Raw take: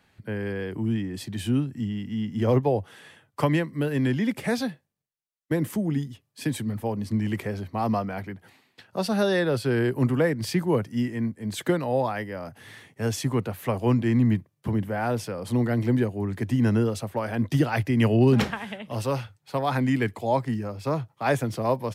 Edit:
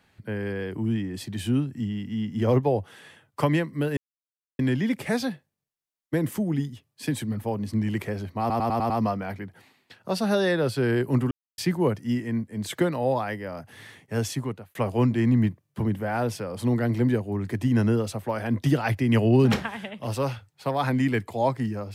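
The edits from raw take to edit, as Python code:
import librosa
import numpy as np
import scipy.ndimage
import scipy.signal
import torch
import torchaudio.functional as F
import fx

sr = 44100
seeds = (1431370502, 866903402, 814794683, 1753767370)

y = fx.edit(x, sr, fx.insert_silence(at_s=3.97, length_s=0.62),
    fx.stutter(start_s=7.78, slice_s=0.1, count=6),
    fx.silence(start_s=10.19, length_s=0.27),
    fx.fade_out_span(start_s=13.11, length_s=0.52), tone=tone)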